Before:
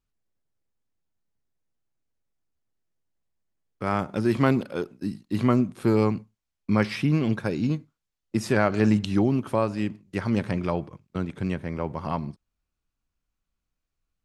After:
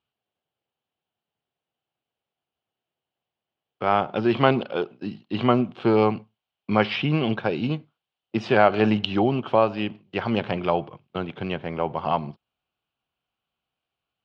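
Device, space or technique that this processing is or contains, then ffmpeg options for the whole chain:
kitchen radio: -af "highpass=160,equalizer=f=190:t=q:w=4:g=-6,equalizer=f=280:t=q:w=4:g=-7,equalizer=f=750:t=q:w=4:g=7,equalizer=f=1.9k:t=q:w=4:g=-5,equalizer=f=3k:t=q:w=4:g=9,lowpass=f=3.9k:w=0.5412,lowpass=f=3.9k:w=1.3066,volume=4.5dB"

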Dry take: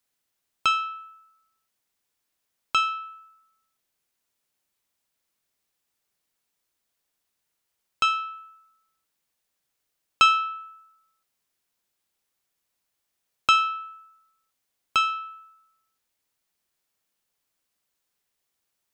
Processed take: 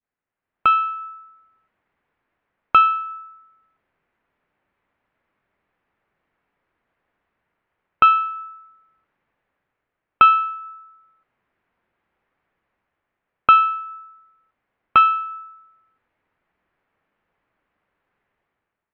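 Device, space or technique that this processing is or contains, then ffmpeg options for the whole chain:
action camera in a waterproof case: -af "adynamicequalizer=threshold=0.02:dfrequency=1300:dqfactor=0.75:tfrequency=1300:tqfactor=0.75:attack=5:release=100:ratio=0.375:range=3.5:mode=cutabove:tftype=bell,lowpass=f=2.1k:w=0.5412,lowpass=f=2.1k:w=1.3066,dynaudnorm=f=180:g=7:m=15dB,volume=-1dB" -ar 44100 -c:a aac -b:a 64k

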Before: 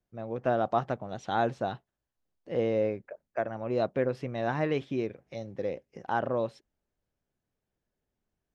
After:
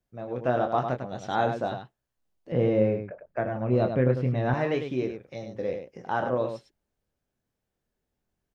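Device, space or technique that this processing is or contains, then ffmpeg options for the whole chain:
slapback doubling: -filter_complex "[0:a]asplit=3[a][b][c];[b]adelay=24,volume=-7dB[d];[c]adelay=101,volume=-7dB[e];[a][d][e]amix=inputs=3:normalize=0,asettb=1/sr,asplit=3[f][g][h];[f]atrim=end=2.524[i];[g]atrim=start=2.52:end=4.54,asetpts=PTS-STARTPTS,afade=t=in:d=0.004:c=qsin,afade=t=out:st=2.016:d=0.004:c=qsin,bass=f=250:g=10,treble=f=4k:g=-9[j];[h]atrim=start=4.536[k];[i][j]acrossfade=d=0.004:c1=hsin:c2=qsin[l];[l][k]acrossfade=d=0.004:c1=qsin:c2=hsin,volume=1dB"

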